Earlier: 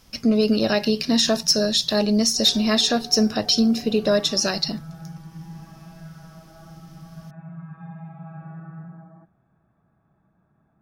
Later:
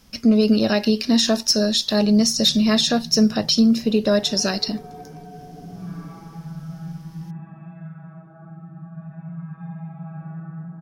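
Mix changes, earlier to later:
background: entry +1.80 s; master: add peaking EQ 180 Hz +5 dB 0.91 oct

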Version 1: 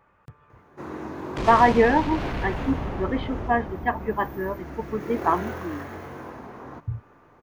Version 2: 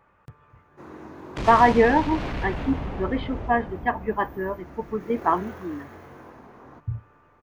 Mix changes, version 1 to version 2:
speech: send on; first sound -7.0 dB

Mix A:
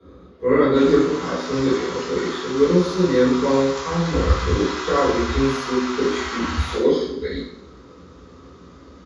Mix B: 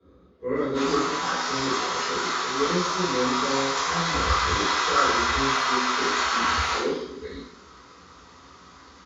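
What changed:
speech -10.0 dB; background: send +6.5 dB

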